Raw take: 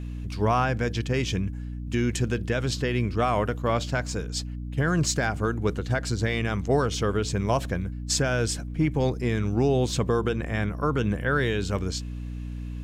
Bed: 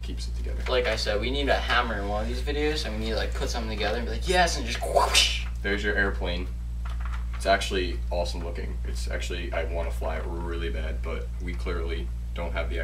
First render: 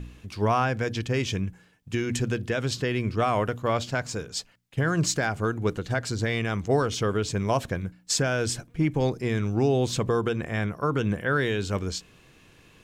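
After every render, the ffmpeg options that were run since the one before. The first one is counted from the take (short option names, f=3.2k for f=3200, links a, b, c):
-af "bandreject=f=60:t=h:w=4,bandreject=f=120:t=h:w=4,bandreject=f=180:t=h:w=4,bandreject=f=240:t=h:w=4,bandreject=f=300:t=h:w=4"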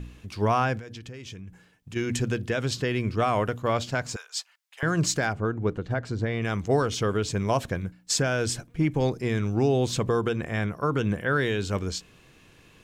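-filter_complex "[0:a]asplit=3[a][b][c];[a]afade=t=out:st=0.78:d=0.02[d];[b]acompressor=threshold=-37dB:ratio=8:attack=3.2:release=140:knee=1:detection=peak,afade=t=in:st=0.78:d=0.02,afade=t=out:st=1.95:d=0.02[e];[c]afade=t=in:st=1.95:d=0.02[f];[d][e][f]amix=inputs=3:normalize=0,asettb=1/sr,asplit=3[g][h][i];[g]atrim=end=4.164[j];[h]atrim=start=4.16:end=4.83,asetpts=PTS-STARTPTS,afade=t=in:d=0.004:c=qsin,afade=t=out:st=0.666:d=0.004:c=qsin,highpass=f=860:w=0.5412,highpass=f=860:w=1.3066[k];[i]atrim=start=4.826[l];[j][k]acrossfade=d=0.004:c1=hsin:c2=qsin[m];[m][l]acrossfade=d=0.004:c1=qsin:c2=hsin,asettb=1/sr,asplit=3[n][o][p];[n]atrim=end=5.334[q];[o]atrim=start=5.33:end=6.42,asetpts=PTS-STARTPTS,afade=t=in:d=0.004:c=qsin,afade=t=out:st=1.086:d=0.004:c=qsin,lowpass=f=1.3k:p=1[r];[p]atrim=start=6.416[s];[q][r]acrossfade=d=0.004:c1=hsin:c2=qsin[t];[t][s]acrossfade=d=0.004:c1=qsin:c2=hsin"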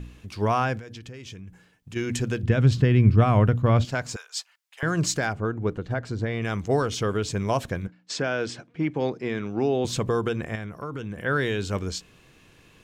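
-filter_complex "[0:a]asettb=1/sr,asplit=3[a][b][c];[a]atrim=end=2.434[d];[b]atrim=start=2.43:end=3.85,asetpts=PTS-STARTPTS,afade=t=in:d=0.004:c=qsin,afade=t=out:st=1.416:d=0.004:c=qsin,bass=f=250:g=14,treble=f=4k:g=-8[e];[c]atrim=start=3.846[f];[d][e]acrossfade=d=0.004:c1=hsin:c2=qsin[g];[g][f]acrossfade=d=0.004:c1=qsin:c2=hsin,asettb=1/sr,asplit=3[h][i][j];[h]atrim=end=7.874[k];[i]atrim=start=7.87:end=9.85,asetpts=PTS-STARTPTS,afade=t=in:d=0.004:c=qsin,afade=t=out:st=1.976:d=0.004:c=qsin,highpass=190,lowpass=4k[l];[j]atrim=start=9.846[m];[k][l]acrossfade=d=0.004:c1=hsin:c2=qsin[n];[n][m]acrossfade=d=0.004:c1=qsin:c2=hsin,asettb=1/sr,asplit=3[o][p][q];[o]atrim=end=10.554[r];[p]atrim=start=10.55:end=11.18,asetpts=PTS-STARTPTS,afade=t=in:d=0.004:c=qsin,afade=t=out:st=0.626:d=0.004:c=qsin,acompressor=threshold=-33dB:ratio=2.5:attack=3.2:release=140:knee=1:detection=peak[s];[q]atrim=start=11.176[t];[r][s]acrossfade=d=0.004:c1=hsin:c2=qsin[u];[u][t]acrossfade=d=0.004:c1=qsin:c2=hsin"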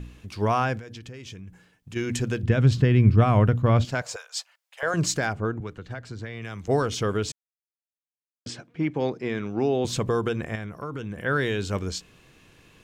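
-filter_complex "[0:a]asettb=1/sr,asplit=3[a][b][c];[a]atrim=end=4.024[d];[b]atrim=start=4.02:end=4.94,asetpts=PTS-STARTPTS,afade=t=in:d=0.004:c=qsin,afade=t=out:st=0.916:d=0.004:c=qsin,lowshelf=f=370:t=q:w=3:g=-13.5[e];[c]atrim=start=4.936[f];[d][e]acrossfade=d=0.004:c1=hsin:c2=qsin[g];[g][f]acrossfade=d=0.004:c1=qsin:c2=hsin,asettb=1/sr,asplit=3[h][i][j];[h]atrim=end=5.604[k];[i]atrim=start=5.6:end=6.68,asetpts=PTS-STARTPTS,afade=t=in:d=0.004:c=qsin,afade=t=out:st=1.076:d=0.004:c=qsin,acrossover=split=110|1200|2400[l][m][n][o];[l]acompressor=threshold=-43dB:ratio=3[p];[m]acompressor=threshold=-39dB:ratio=3[q];[n]acompressor=threshold=-44dB:ratio=3[r];[o]acompressor=threshold=-47dB:ratio=3[s];[p][q][r][s]amix=inputs=4:normalize=0[t];[j]atrim=start=6.676[u];[k][t]acrossfade=d=0.004:c1=hsin:c2=qsin[v];[v][u]acrossfade=d=0.004:c1=qsin:c2=hsin,asplit=3[w][x][y];[w]atrim=end=7.32,asetpts=PTS-STARTPTS,afade=t=out:st=7.316:d=0.004:c=hsin[z];[x]atrim=start=7.32:end=8.46,asetpts=PTS-STARTPTS,volume=0[aa];[y]atrim=start=8.46,asetpts=PTS-STARTPTS,afade=t=in:d=0.004:c=hsin[ab];[z][aa][ab]concat=n=3:v=0:a=1"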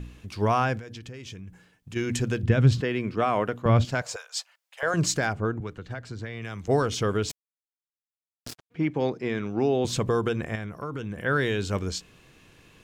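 -filter_complex "[0:a]asettb=1/sr,asplit=3[a][b][c];[a]atrim=end=2.814[d];[b]atrim=start=2.81:end=3.66,asetpts=PTS-STARTPTS,afade=t=in:d=0.004:c=qsin,afade=t=out:st=0.846:d=0.004:c=qsin,highpass=350[e];[c]atrim=start=3.656[f];[d][e]acrossfade=d=0.004:c1=hsin:c2=qsin[g];[g][f]acrossfade=d=0.004:c1=qsin:c2=hsin,asplit=3[h][i][j];[h]afade=t=out:st=7.29:d=0.02[k];[i]acrusher=bits=4:mix=0:aa=0.5,afade=t=in:st=7.29:d=0.02,afade=t=out:st=8.7:d=0.02[l];[j]afade=t=in:st=8.7:d=0.02[m];[k][l][m]amix=inputs=3:normalize=0"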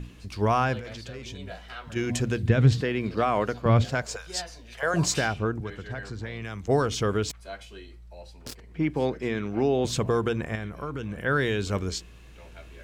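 -filter_complex "[1:a]volume=-17.5dB[a];[0:a][a]amix=inputs=2:normalize=0"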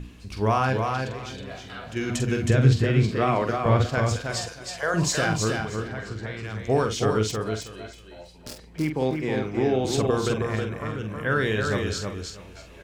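-filter_complex "[0:a]asplit=2[a][b];[b]adelay=46,volume=-7dB[c];[a][c]amix=inputs=2:normalize=0,aecho=1:1:318|636|954:0.596|0.125|0.0263"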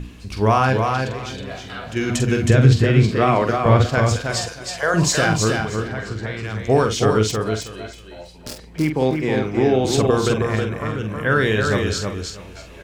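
-af "volume=6dB,alimiter=limit=-2dB:level=0:latency=1"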